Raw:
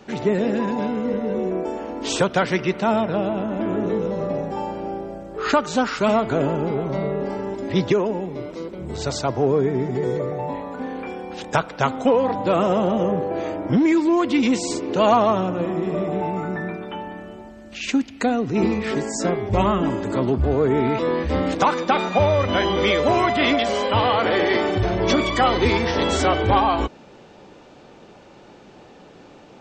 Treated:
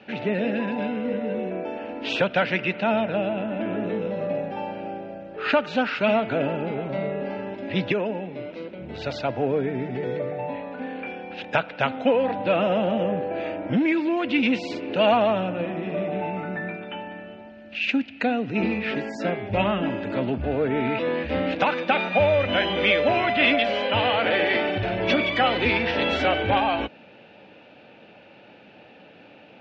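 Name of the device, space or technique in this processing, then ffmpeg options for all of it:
guitar cabinet: -af "highpass=110,equalizer=f=150:t=q:w=4:g=-4,equalizer=f=380:t=q:w=4:g=-7,equalizer=f=590:t=q:w=4:g=3,equalizer=f=1.1k:t=q:w=4:g=-9,equalizer=f=1.6k:t=q:w=4:g=4,equalizer=f=2.6k:t=q:w=4:g=10,lowpass=f=4k:w=0.5412,lowpass=f=4k:w=1.3066,volume=-2.5dB"

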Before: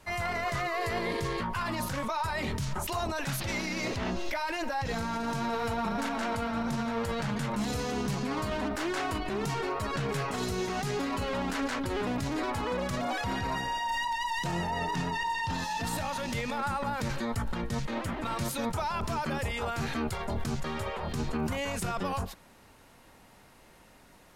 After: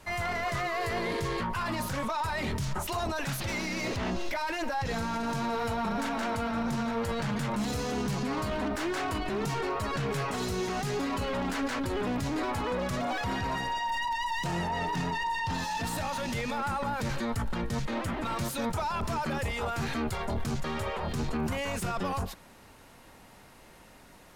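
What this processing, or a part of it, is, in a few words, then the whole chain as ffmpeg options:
saturation between pre-emphasis and de-emphasis: -af "highshelf=f=2.5k:g=11.5,asoftclip=type=tanh:threshold=-26.5dB,highshelf=f=2.5k:g=-11.5,volume=3dB"

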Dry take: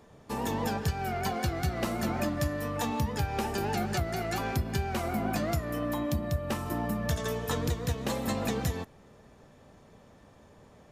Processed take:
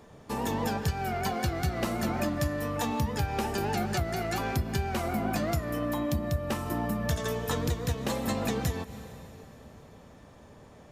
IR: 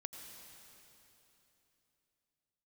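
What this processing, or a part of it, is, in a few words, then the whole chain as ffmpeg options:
ducked reverb: -filter_complex "[0:a]asplit=3[a][b][c];[1:a]atrim=start_sample=2205[d];[b][d]afir=irnorm=-1:irlink=0[e];[c]apad=whole_len=481182[f];[e][f]sidechaincompress=threshold=-41dB:ratio=8:attack=16:release=165,volume=-2.5dB[g];[a][g]amix=inputs=2:normalize=0"

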